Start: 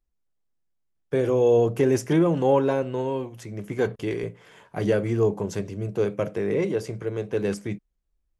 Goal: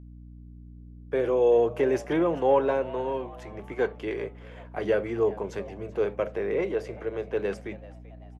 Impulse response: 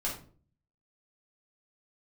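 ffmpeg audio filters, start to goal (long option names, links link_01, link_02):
-filter_complex "[0:a]acrossover=split=330 3500:gain=0.178 1 0.2[link_01][link_02][link_03];[link_01][link_02][link_03]amix=inputs=3:normalize=0,aeval=exprs='val(0)+0.00631*(sin(2*PI*60*n/s)+sin(2*PI*2*60*n/s)/2+sin(2*PI*3*60*n/s)/3+sin(2*PI*4*60*n/s)/4+sin(2*PI*5*60*n/s)/5)':channel_layout=same,asplit=4[link_04][link_05][link_06][link_07];[link_05]adelay=386,afreqshift=110,volume=-20dB[link_08];[link_06]adelay=772,afreqshift=220,volume=-26.9dB[link_09];[link_07]adelay=1158,afreqshift=330,volume=-33.9dB[link_10];[link_04][link_08][link_09][link_10]amix=inputs=4:normalize=0"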